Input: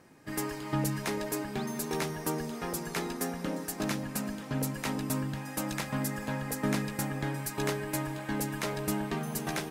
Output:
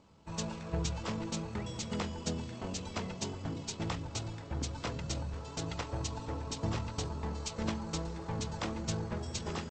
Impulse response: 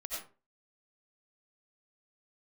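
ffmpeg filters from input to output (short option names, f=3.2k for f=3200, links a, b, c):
-af "equalizer=f=250:w=7.8:g=-11,asetrate=23361,aresample=44100,atempo=1.88775,volume=-2.5dB"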